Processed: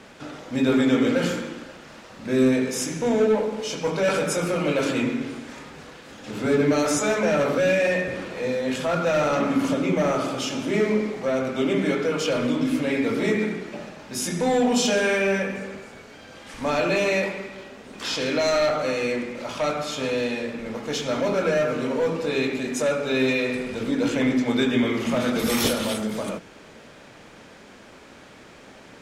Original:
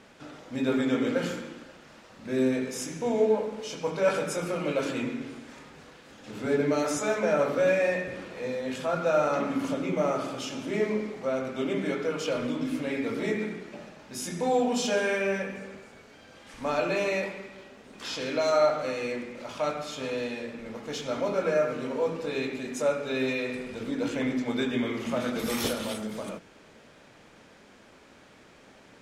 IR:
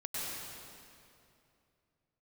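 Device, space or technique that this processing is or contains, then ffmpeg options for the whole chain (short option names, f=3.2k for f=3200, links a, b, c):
one-band saturation: -filter_complex "[0:a]acrossover=split=330|2000[a][b][c];[b]asoftclip=type=tanh:threshold=-28dB[d];[a][d][c]amix=inputs=3:normalize=0,volume=7.5dB"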